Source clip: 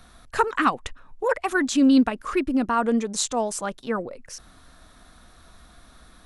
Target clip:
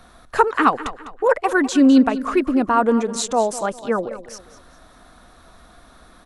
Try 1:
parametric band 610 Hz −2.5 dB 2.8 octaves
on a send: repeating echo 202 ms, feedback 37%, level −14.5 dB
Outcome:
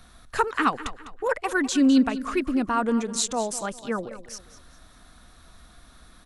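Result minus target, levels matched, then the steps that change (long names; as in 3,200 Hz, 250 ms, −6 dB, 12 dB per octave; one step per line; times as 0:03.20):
500 Hz band −2.5 dB
change: parametric band 610 Hz +7 dB 2.8 octaves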